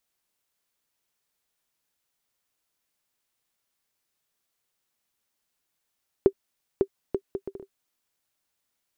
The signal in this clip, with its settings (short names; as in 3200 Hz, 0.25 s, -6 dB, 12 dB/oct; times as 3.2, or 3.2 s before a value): bouncing ball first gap 0.55 s, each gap 0.61, 391 Hz, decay 69 ms -6.5 dBFS